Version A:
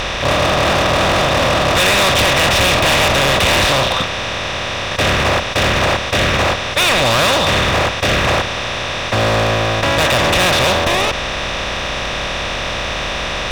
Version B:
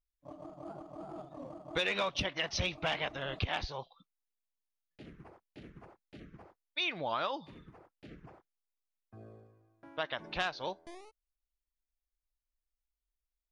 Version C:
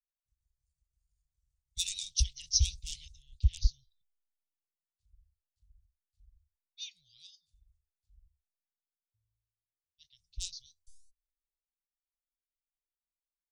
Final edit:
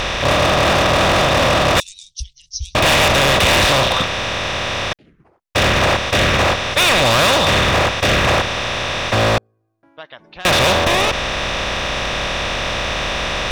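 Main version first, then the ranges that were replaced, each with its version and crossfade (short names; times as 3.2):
A
1.8–2.75 from C
4.93–5.55 from B
9.38–10.45 from B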